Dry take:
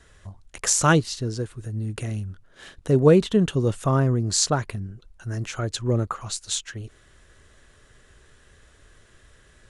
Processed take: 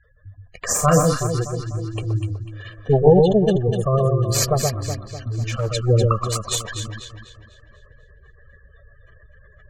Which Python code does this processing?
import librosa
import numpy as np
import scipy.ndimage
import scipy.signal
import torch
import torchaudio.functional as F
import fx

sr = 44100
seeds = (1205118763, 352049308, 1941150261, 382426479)

p1 = fx.lower_of_two(x, sr, delay_ms=1.7)
p2 = fx.spec_gate(p1, sr, threshold_db=-15, keep='strong')
p3 = p2 + fx.echo_alternate(p2, sr, ms=124, hz=1200.0, feedback_pct=65, wet_db=-3.0, dry=0)
p4 = fx.rider(p3, sr, range_db=4, speed_s=2.0)
p5 = fx.low_shelf(p4, sr, hz=280.0, db=-5.0)
p6 = fx.env_lowpass(p5, sr, base_hz=3000.0, full_db=-22.0)
p7 = fx.doubler(p6, sr, ms=35.0, db=-5, at=(0.65, 1.27))
p8 = fx.clip_hard(p7, sr, threshold_db=-23.0, at=(4.78, 5.71))
p9 = fx.dynamic_eq(p8, sr, hz=4400.0, q=0.71, threshold_db=-40.0, ratio=4.0, max_db=-4)
y = p9 * librosa.db_to_amplitude(6.0)